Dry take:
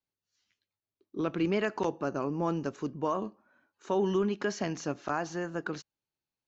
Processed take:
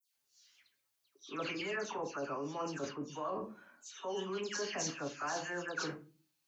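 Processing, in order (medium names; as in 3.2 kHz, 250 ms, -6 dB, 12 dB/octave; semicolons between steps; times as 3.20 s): peaking EQ 150 Hz -11.5 dB 2.9 oct; phase dispersion lows, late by 149 ms, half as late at 2.6 kHz; reverberation RT60 0.35 s, pre-delay 7 ms, DRR 5 dB; reverse; compression 6:1, threshold -43 dBFS, peak gain reduction 15 dB; reverse; high-pass 67 Hz; treble shelf 2.6 kHz +8 dB; trim +5.5 dB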